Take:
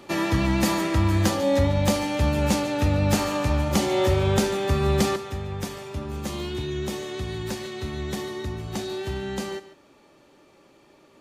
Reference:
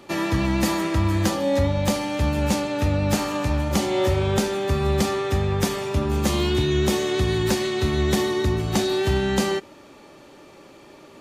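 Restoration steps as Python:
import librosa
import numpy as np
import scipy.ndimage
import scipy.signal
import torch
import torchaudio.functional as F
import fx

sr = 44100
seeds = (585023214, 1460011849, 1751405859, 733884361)

y = fx.fix_echo_inverse(x, sr, delay_ms=144, level_db=-15.5)
y = fx.gain(y, sr, db=fx.steps((0.0, 0.0), (5.16, 9.0)))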